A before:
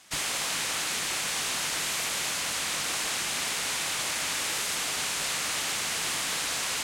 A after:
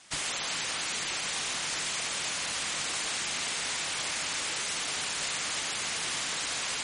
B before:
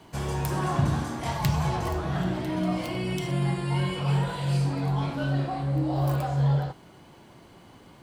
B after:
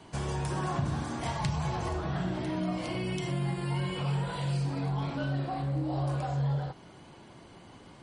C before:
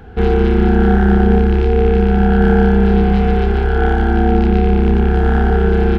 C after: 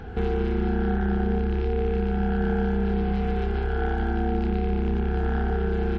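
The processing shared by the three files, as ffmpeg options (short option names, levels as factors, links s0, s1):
-af "acompressor=threshold=0.0282:ratio=2" -ar 44100 -c:a libmp3lame -b:a 40k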